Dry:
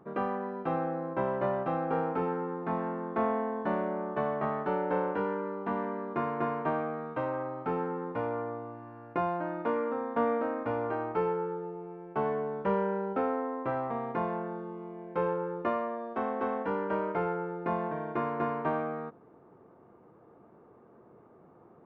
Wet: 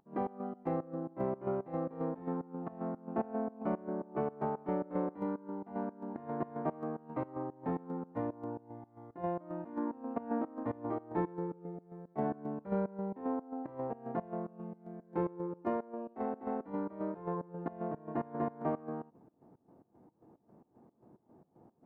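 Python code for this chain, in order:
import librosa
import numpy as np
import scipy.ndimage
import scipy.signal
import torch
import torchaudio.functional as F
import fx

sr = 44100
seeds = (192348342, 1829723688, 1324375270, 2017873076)

y = fx.volume_shaper(x, sr, bpm=112, per_beat=2, depth_db=-19, release_ms=128.0, shape='slow start')
y = fx.formant_shift(y, sr, semitones=-5)
y = y * 10.0 ** (-3.0 / 20.0)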